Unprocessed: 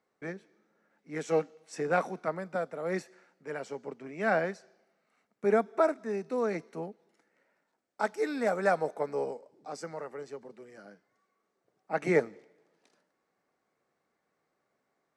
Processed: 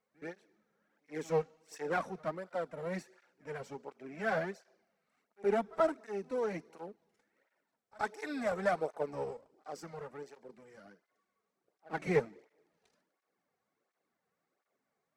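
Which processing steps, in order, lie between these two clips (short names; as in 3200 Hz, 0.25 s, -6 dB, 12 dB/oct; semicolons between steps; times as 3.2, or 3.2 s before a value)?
half-wave gain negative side -7 dB; reverse echo 77 ms -23.5 dB; tape flanging out of phase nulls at 1.4 Hz, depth 3.6 ms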